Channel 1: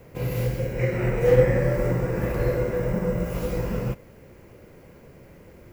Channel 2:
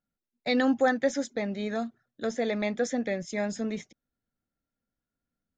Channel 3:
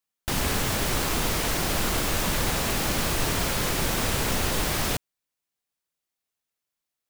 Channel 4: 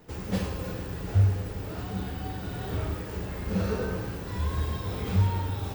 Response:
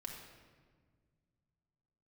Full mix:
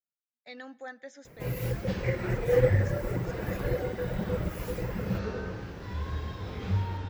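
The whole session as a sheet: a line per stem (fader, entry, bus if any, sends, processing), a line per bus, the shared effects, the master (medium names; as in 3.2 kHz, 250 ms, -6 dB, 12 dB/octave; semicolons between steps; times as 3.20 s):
-4.5 dB, 1.25 s, no send, treble shelf 9.8 kHz +4.5 dB; reverb removal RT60 1.5 s
-17.5 dB, 0.00 s, send -16.5 dB, high-pass 520 Hz 6 dB/octave
mute
-5.0 dB, 1.55 s, no send, low-pass 6.1 kHz 24 dB/octave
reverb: on, RT60 1.7 s, pre-delay 4 ms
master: peaking EQ 1.7 kHz +3 dB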